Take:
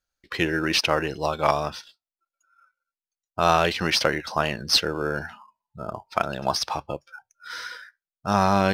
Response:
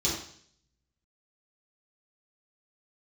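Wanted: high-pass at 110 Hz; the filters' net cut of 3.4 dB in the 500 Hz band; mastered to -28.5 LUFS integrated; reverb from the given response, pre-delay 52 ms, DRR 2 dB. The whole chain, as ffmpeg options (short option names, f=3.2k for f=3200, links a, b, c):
-filter_complex "[0:a]highpass=110,equalizer=f=500:t=o:g=-4.5,asplit=2[a][b];[1:a]atrim=start_sample=2205,adelay=52[c];[b][c]afir=irnorm=-1:irlink=0,volume=-10.5dB[d];[a][d]amix=inputs=2:normalize=0,volume=-6.5dB"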